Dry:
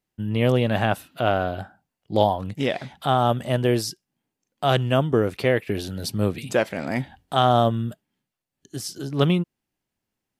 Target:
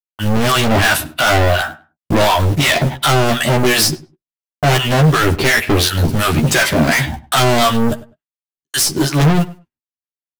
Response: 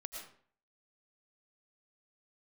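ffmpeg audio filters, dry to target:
-filter_complex "[0:a]agate=range=0.00126:threshold=0.00794:ratio=16:detection=peak,equalizer=f=200:t=o:w=0.33:g=-7,equalizer=f=500:t=o:w=0.33:g=-10,equalizer=f=800:t=o:w=0.33:g=-6,aeval=exprs='0.473*(cos(1*acos(clip(val(0)/0.473,-1,1)))-cos(1*PI/2))+0.0473*(cos(4*acos(clip(val(0)/0.473,-1,1)))-cos(4*PI/2))':c=same,acrossover=split=870[s0][s1];[s0]aeval=exprs='val(0)*(1-1/2+1/2*cos(2*PI*2.8*n/s))':c=same[s2];[s1]aeval=exprs='val(0)*(1-1/2-1/2*cos(2*PI*2.8*n/s))':c=same[s3];[s2][s3]amix=inputs=2:normalize=0,asplit=2[s4][s5];[s5]aeval=exprs='0.316*sin(PI/2*5.62*val(0)/0.316)':c=same,volume=0.376[s6];[s4][s6]amix=inputs=2:normalize=0,apsyclip=3.16,asoftclip=type=tanh:threshold=0.141,acrusher=bits=4:mode=log:mix=0:aa=0.000001,asplit=2[s7][s8];[s8]adelay=13,volume=0.668[s9];[s7][s9]amix=inputs=2:normalize=0,asplit=2[s10][s11];[s11]adelay=101,lowpass=f=2300:p=1,volume=0.133,asplit=2[s12][s13];[s13]adelay=101,lowpass=f=2300:p=1,volume=0.19[s14];[s12][s14]amix=inputs=2:normalize=0[s15];[s10][s15]amix=inputs=2:normalize=0,volume=1.88"

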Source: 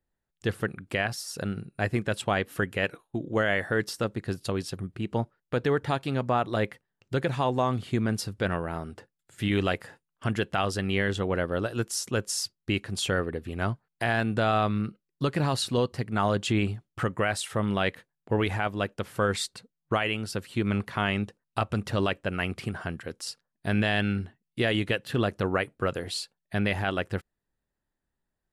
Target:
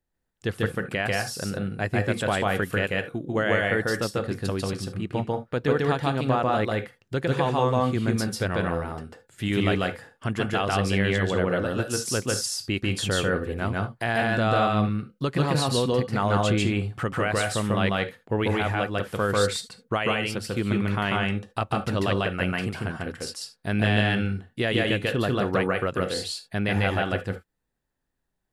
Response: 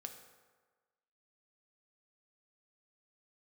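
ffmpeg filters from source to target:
-filter_complex "[0:a]asplit=2[s0][s1];[1:a]atrim=start_sample=2205,afade=t=out:st=0.13:d=0.01,atrim=end_sample=6174,adelay=144[s2];[s1][s2]afir=irnorm=-1:irlink=0,volume=1.78[s3];[s0][s3]amix=inputs=2:normalize=0"

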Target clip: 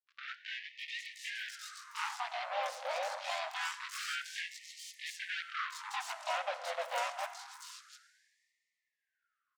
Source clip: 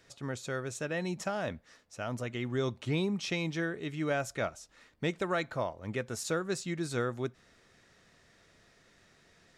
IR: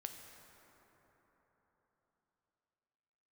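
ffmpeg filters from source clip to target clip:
-filter_complex "[0:a]aemphasis=mode=reproduction:type=50fm,bandreject=f=50:t=h:w=6,bandreject=f=100:t=h:w=6,bandreject=f=150:t=h:w=6,bandreject=f=200:t=h:w=6,acompressor=threshold=0.00158:ratio=2,asplit=4[s0][s1][s2][s3];[s1]asetrate=33038,aresample=44100,atempo=1.33484,volume=0.398[s4];[s2]asetrate=66075,aresample=44100,atempo=0.66742,volume=0.708[s5];[s3]asetrate=88200,aresample=44100,atempo=0.5,volume=0.891[s6];[s0][s4][s5][s6]amix=inputs=4:normalize=0,acrusher=bits=6:mix=0:aa=0.5,acrossover=split=4300[s7][s8];[s8]adelay=710[s9];[s7][s9]amix=inputs=2:normalize=0,asplit=2[s10][s11];[1:a]atrim=start_sample=2205,lowpass=9000[s12];[s11][s12]afir=irnorm=-1:irlink=0,volume=2.11[s13];[s10][s13]amix=inputs=2:normalize=0,afftfilt=real='re*gte(b*sr/1024,480*pow(1800/480,0.5+0.5*sin(2*PI*0.26*pts/sr)))':imag='im*gte(b*sr/1024,480*pow(1800/480,0.5+0.5*sin(2*PI*0.26*pts/sr)))':win_size=1024:overlap=0.75,volume=1.41"

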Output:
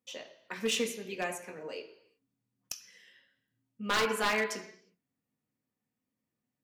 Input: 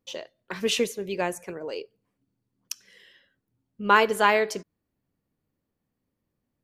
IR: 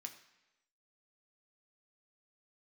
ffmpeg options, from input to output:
-filter_complex "[1:a]atrim=start_sample=2205,afade=t=out:st=0.42:d=0.01,atrim=end_sample=18963[s0];[0:a][s0]afir=irnorm=-1:irlink=0,aeval=exprs='0.0794*(abs(mod(val(0)/0.0794+3,4)-2)-1)':c=same"

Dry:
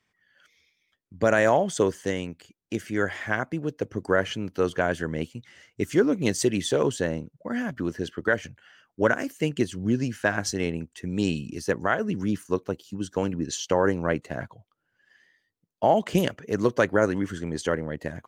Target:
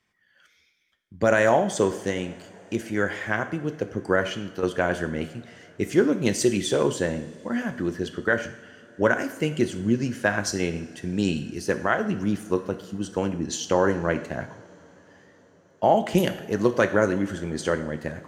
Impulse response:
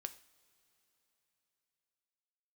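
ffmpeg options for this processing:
-filter_complex "[0:a]asettb=1/sr,asplit=3[s0][s1][s2];[s0]atrim=end=4.224[s3];[s1]atrim=start=4.22:end=4.63,asetpts=PTS-STARTPTS,afade=t=in:d=0.004:c=qsin,afade=t=out:st=0.406:d=0.004:c=qsin,acompressor=threshold=0.0355:ratio=6[s4];[s2]atrim=start=4.626[s5];[s3][s4]acrossfade=d=0.004:c1=hsin:c2=qsin[s6];[s6][s5]acrossfade=d=0.004:c1=qsin:c2=hsin[s7];[1:a]atrim=start_sample=2205,asetrate=28665,aresample=44100[s8];[s7][s8]afir=irnorm=-1:irlink=0,volume=1.33"

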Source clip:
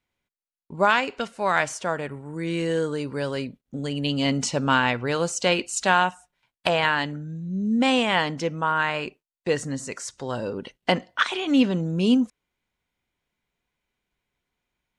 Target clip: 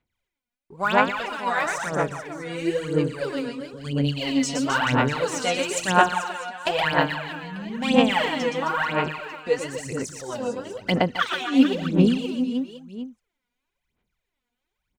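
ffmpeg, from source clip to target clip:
-af "aecho=1:1:120|264|436.8|644.2|893:0.631|0.398|0.251|0.158|0.1,aphaser=in_gain=1:out_gain=1:delay=4.2:decay=0.76:speed=1:type=sinusoidal,volume=0.473"

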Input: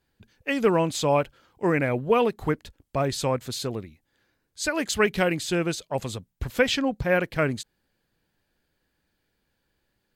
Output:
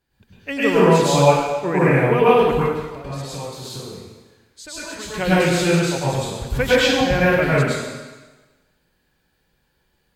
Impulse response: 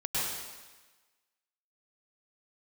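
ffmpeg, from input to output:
-filter_complex "[0:a]asettb=1/sr,asplit=3[s0][s1][s2];[s0]atrim=end=2.514[s3];[s1]atrim=start=2.51:end=5.09,asetpts=PTS-STARTPTS,afade=t=in:d=0.004:c=qsin,afade=t=out:st=2.576:d=0.004:c=qsin,acompressor=threshold=0.0126:ratio=4[s4];[s2]atrim=start=5.086[s5];[s3][s4]acrossfade=d=0.004:c1=hsin:c2=qsin[s6];[s6][s5]acrossfade=d=0.004:c1=qsin:c2=hsin[s7];[1:a]atrim=start_sample=2205[s8];[s7][s8]afir=irnorm=-1:irlink=0"

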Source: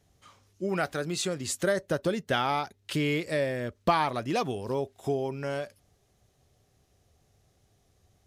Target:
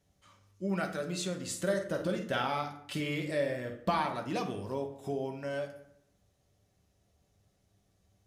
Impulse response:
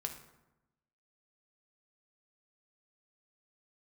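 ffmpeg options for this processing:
-filter_complex "[0:a]asettb=1/sr,asplit=3[s0][s1][s2];[s0]atrim=end=1.484[s3];[s1]atrim=start=1.48:end=3.82,asetpts=PTS-STARTPTS,afade=t=in:d=0.004:c=qsin,afade=t=out:st=2.336:d=0.004:c=qsin,asplit=2[s4][s5];[s5]adelay=48,volume=0.447[s6];[s4][s6]amix=inputs=2:normalize=0,atrim=end_sample=103194[s7];[s2]atrim=start=3.816[s8];[s3][s7]acrossfade=d=0.004:c1=hsin:c2=qsin[s9];[s9][s8]acrossfade=d=0.004:c1=qsin:c2=hsin[s10];[1:a]atrim=start_sample=2205,asetrate=57330,aresample=44100[s11];[s10][s11]afir=irnorm=-1:irlink=0,volume=0.75"

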